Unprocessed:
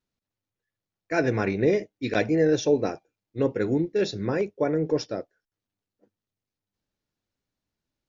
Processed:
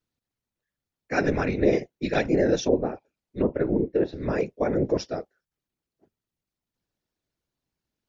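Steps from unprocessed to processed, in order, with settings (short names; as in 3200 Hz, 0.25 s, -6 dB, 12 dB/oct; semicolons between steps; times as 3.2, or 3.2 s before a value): 2.6–4.21 treble ducked by the level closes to 1200 Hz, closed at -20 dBFS; whisperiser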